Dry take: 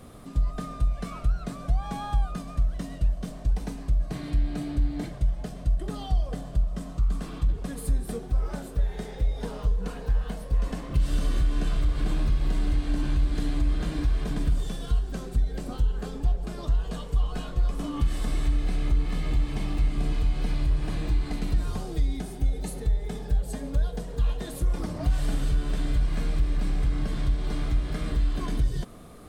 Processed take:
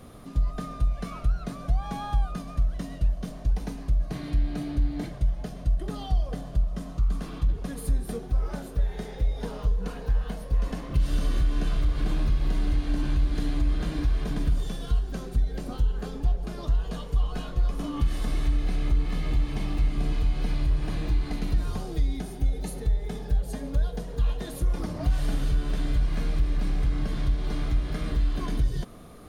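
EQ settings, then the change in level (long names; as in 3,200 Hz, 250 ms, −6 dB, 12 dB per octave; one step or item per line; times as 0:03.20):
notch filter 7,900 Hz, Q 6.4
0.0 dB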